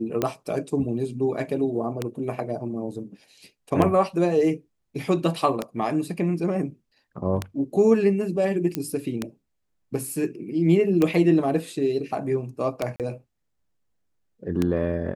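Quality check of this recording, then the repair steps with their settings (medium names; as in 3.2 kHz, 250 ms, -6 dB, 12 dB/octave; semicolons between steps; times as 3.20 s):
tick 33 1/3 rpm -10 dBFS
8.75 s: pop -10 dBFS
12.96–13.00 s: dropout 38 ms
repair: de-click; interpolate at 12.96 s, 38 ms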